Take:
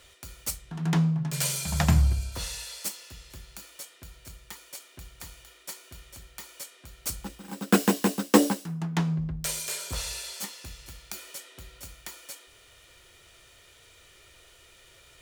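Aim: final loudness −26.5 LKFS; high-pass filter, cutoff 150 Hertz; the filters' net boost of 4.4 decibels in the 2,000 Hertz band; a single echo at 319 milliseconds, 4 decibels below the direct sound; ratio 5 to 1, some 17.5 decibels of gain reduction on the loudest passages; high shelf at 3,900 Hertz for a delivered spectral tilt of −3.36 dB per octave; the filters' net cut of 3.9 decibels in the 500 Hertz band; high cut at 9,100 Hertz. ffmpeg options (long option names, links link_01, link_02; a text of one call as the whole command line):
ffmpeg -i in.wav -af "highpass=150,lowpass=9100,equalizer=frequency=500:width_type=o:gain=-5,equalizer=frequency=2000:width_type=o:gain=4.5,highshelf=frequency=3900:gain=5.5,acompressor=threshold=-35dB:ratio=5,aecho=1:1:319:0.631,volume=11.5dB" out.wav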